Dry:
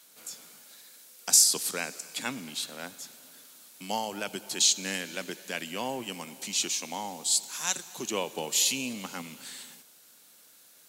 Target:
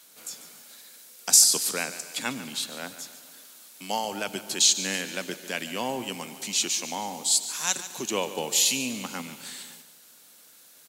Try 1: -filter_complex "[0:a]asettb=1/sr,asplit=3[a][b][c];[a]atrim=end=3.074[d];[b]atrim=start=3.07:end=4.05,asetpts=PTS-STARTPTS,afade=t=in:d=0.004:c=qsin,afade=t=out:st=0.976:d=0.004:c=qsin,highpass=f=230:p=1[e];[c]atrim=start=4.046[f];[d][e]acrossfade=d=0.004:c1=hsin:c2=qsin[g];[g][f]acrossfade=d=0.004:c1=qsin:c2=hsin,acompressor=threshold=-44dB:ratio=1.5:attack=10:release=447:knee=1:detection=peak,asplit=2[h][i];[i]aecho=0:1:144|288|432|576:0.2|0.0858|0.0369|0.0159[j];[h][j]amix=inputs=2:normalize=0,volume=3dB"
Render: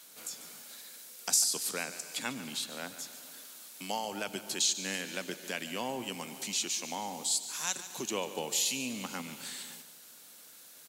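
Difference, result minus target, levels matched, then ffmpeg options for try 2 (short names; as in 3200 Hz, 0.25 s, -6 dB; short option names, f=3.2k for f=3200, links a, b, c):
compressor: peak gain reduction +10.5 dB
-filter_complex "[0:a]asettb=1/sr,asplit=3[a][b][c];[a]atrim=end=3.074[d];[b]atrim=start=3.07:end=4.05,asetpts=PTS-STARTPTS,afade=t=in:d=0.004:c=qsin,afade=t=out:st=0.976:d=0.004:c=qsin,highpass=f=230:p=1[e];[c]atrim=start=4.046[f];[d][e]acrossfade=d=0.004:c1=hsin:c2=qsin[g];[g][f]acrossfade=d=0.004:c1=qsin:c2=hsin,asplit=2[h][i];[i]aecho=0:1:144|288|432|576:0.2|0.0858|0.0369|0.0159[j];[h][j]amix=inputs=2:normalize=0,volume=3dB"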